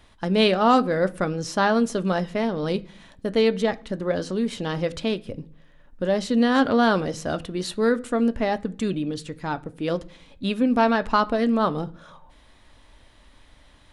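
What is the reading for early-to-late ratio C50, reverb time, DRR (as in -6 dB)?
22.0 dB, 0.50 s, 10.0 dB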